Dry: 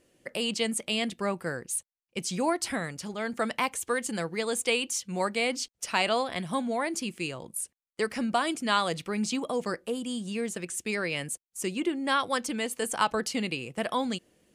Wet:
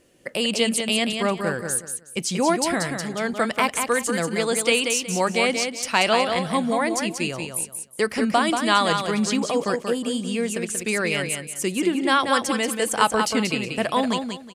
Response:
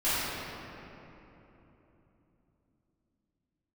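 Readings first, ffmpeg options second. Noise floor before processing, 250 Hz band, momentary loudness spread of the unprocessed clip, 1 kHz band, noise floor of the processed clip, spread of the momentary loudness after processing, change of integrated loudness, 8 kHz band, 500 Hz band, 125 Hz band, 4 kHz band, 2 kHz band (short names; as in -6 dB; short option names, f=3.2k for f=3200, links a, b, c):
-83 dBFS, +7.5 dB, 7 LU, +7.5 dB, -43 dBFS, 7 LU, +7.5 dB, +7.5 dB, +7.5 dB, +7.5 dB, +7.5 dB, +7.5 dB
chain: -af "aecho=1:1:184|368|552:0.501|0.125|0.0313,volume=6.5dB"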